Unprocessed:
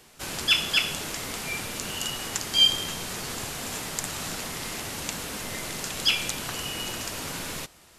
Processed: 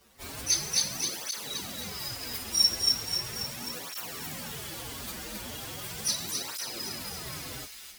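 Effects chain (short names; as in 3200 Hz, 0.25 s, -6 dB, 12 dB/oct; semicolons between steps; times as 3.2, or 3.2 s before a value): inharmonic rescaling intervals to 122%; thin delay 0.264 s, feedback 55%, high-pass 2100 Hz, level -4 dB; tape flanging out of phase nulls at 0.38 Hz, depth 7.5 ms; gain +2 dB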